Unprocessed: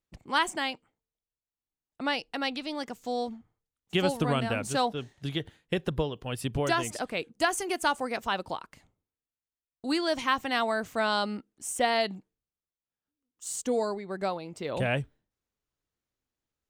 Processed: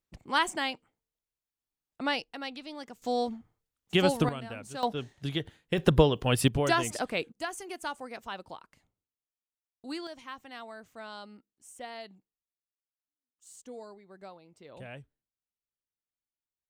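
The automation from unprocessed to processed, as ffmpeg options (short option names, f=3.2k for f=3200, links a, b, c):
-af "asetnsamples=n=441:p=0,asendcmd='2.24 volume volume -7.5dB;3.02 volume volume 2dB;4.29 volume volume -11dB;4.83 volume volume 0dB;5.78 volume volume 8.5dB;6.48 volume volume 1dB;7.32 volume volume -9.5dB;10.07 volume volume -16.5dB',volume=-0.5dB"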